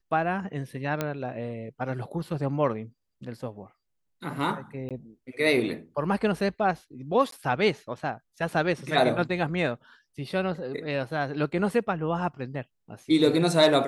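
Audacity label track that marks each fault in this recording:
1.010000	1.010000	click −13 dBFS
4.890000	4.910000	drop-out 17 ms
7.310000	7.320000	drop-out 13 ms

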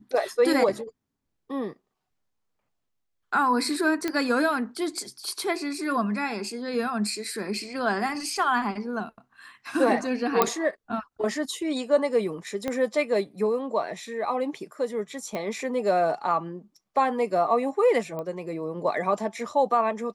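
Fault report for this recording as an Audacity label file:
4.080000	4.080000	click −13 dBFS
10.420000	10.420000	click −5 dBFS
12.680000	12.680000	click −15 dBFS
15.350000	15.350000	click −19 dBFS
18.190000	18.190000	click −22 dBFS

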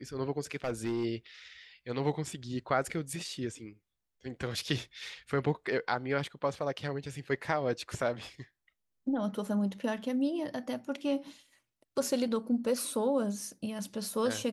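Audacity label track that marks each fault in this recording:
0.550000	1.050000	clipping −27.5 dBFS

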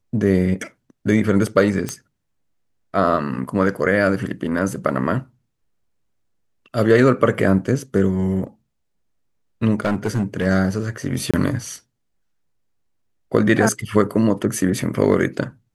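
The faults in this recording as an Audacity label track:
1.890000	1.890000	click −10 dBFS
9.850000	10.470000	clipping −15 dBFS
11.310000	11.340000	drop-out 26 ms

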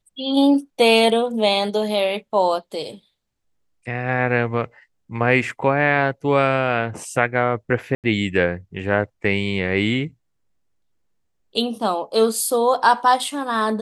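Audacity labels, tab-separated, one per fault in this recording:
7.950000	8.040000	drop-out 88 ms

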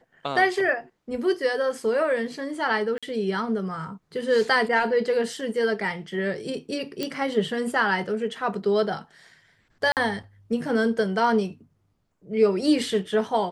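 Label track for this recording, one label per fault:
2.980000	3.030000	drop-out 46 ms
7.030000	7.030000	click −13 dBFS
9.920000	9.970000	drop-out 48 ms

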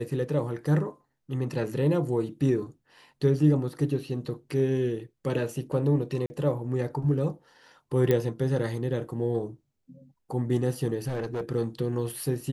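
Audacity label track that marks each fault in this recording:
6.260000	6.300000	drop-out 40 ms
8.110000	8.110000	click −12 dBFS
11.070000	11.520000	clipping −27 dBFS

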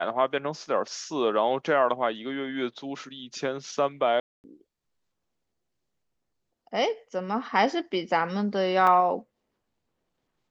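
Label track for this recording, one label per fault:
4.200000	4.440000	drop-out 239 ms
8.870000	8.870000	drop-out 4.2 ms

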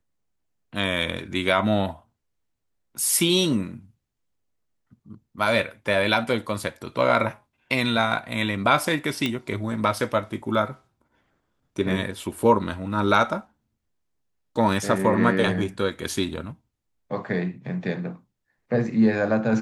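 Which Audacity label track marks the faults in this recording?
9.260000	9.260000	click −11 dBFS

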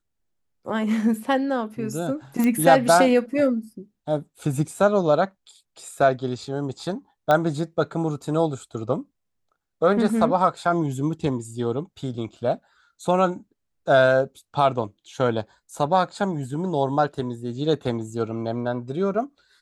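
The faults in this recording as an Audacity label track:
2.440000	2.440000	click −12 dBFS
7.310000	7.310000	click −9 dBFS

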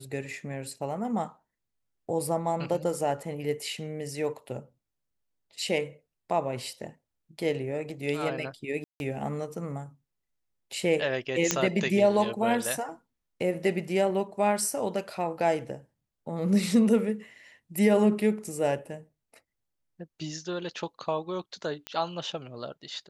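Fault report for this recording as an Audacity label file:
8.840000	9.000000	drop-out 161 ms
11.510000	11.510000	click −7 dBFS
21.870000	21.870000	click −18 dBFS

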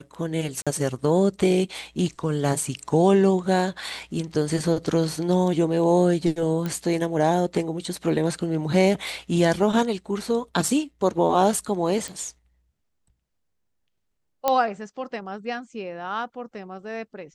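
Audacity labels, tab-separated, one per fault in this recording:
0.620000	0.670000	drop-out 46 ms
6.660000	6.660000	click −15 dBFS
12.080000	12.080000	click
14.480000	14.480000	click −7 dBFS

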